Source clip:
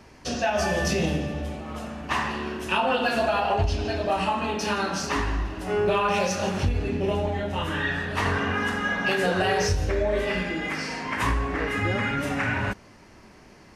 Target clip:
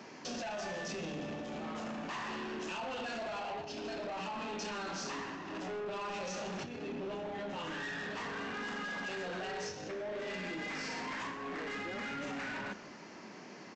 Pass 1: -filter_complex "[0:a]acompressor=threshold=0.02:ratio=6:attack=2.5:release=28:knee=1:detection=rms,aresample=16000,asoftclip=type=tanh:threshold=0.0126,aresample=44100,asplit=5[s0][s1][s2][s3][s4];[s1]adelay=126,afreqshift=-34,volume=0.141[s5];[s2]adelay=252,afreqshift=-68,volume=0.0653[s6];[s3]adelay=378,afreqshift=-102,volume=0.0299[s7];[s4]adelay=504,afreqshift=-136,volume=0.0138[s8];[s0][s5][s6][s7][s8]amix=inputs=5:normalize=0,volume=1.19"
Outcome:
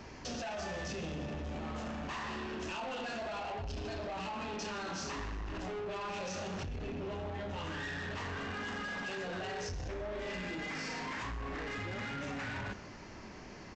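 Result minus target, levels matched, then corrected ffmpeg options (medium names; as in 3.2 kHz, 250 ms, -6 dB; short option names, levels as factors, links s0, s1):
125 Hz band +7.5 dB
-filter_complex "[0:a]acompressor=threshold=0.02:ratio=6:attack=2.5:release=28:knee=1:detection=rms,highpass=f=170:w=0.5412,highpass=f=170:w=1.3066,aresample=16000,asoftclip=type=tanh:threshold=0.0126,aresample=44100,asplit=5[s0][s1][s2][s3][s4];[s1]adelay=126,afreqshift=-34,volume=0.141[s5];[s2]adelay=252,afreqshift=-68,volume=0.0653[s6];[s3]adelay=378,afreqshift=-102,volume=0.0299[s7];[s4]adelay=504,afreqshift=-136,volume=0.0138[s8];[s0][s5][s6][s7][s8]amix=inputs=5:normalize=0,volume=1.19"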